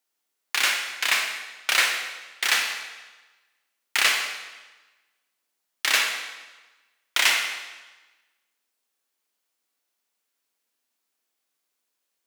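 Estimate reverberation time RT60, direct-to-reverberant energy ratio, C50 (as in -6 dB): 1.2 s, 2.5 dB, 4.0 dB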